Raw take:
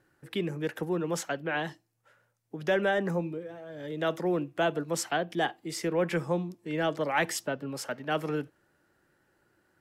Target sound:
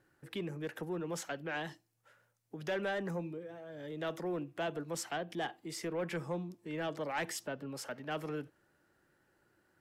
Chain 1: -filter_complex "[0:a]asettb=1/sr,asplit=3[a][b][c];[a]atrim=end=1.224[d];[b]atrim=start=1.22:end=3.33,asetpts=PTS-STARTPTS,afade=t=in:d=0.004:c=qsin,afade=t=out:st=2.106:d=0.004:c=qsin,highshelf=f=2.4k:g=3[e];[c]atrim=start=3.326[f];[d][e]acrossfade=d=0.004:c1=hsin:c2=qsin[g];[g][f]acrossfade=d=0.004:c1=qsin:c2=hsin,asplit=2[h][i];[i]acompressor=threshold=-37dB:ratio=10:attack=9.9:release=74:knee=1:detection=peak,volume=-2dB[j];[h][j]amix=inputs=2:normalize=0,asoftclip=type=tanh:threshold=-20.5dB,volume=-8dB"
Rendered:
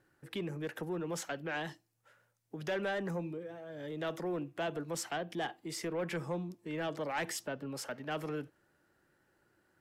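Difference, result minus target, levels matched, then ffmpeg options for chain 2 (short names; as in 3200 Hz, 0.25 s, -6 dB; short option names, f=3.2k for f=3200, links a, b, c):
compressor: peak gain reduction -7 dB
-filter_complex "[0:a]asettb=1/sr,asplit=3[a][b][c];[a]atrim=end=1.224[d];[b]atrim=start=1.22:end=3.33,asetpts=PTS-STARTPTS,afade=t=in:d=0.004:c=qsin,afade=t=out:st=2.106:d=0.004:c=qsin,highshelf=f=2.4k:g=3[e];[c]atrim=start=3.326[f];[d][e]acrossfade=d=0.004:c1=hsin:c2=qsin[g];[g][f]acrossfade=d=0.004:c1=qsin:c2=hsin,asplit=2[h][i];[i]acompressor=threshold=-45dB:ratio=10:attack=9.9:release=74:knee=1:detection=peak,volume=-2dB[j];[h][j]amix=inputs=2:normalize=0,asoftclip=type=tanh:threshold=-20.5dB,volume=-8dB"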